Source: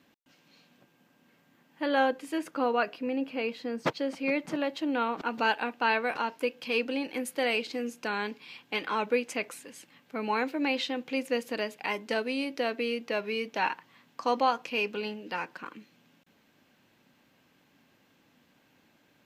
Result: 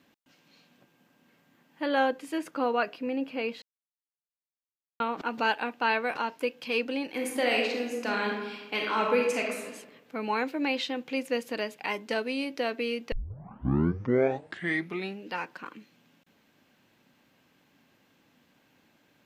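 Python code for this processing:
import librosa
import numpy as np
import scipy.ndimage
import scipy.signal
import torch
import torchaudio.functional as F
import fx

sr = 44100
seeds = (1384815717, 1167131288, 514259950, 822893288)

y = fx.reverb_throw(x, sr, start_s=7.12, length_s=2.57, rt60_s=1.1, drr_db=-0.5)
y = fx.edit(y, sr, fx.silence(start_s=3.62, length_s=1.38),
    fx.tape_start(start_s=13.12, length_s=2.15), tone=tone)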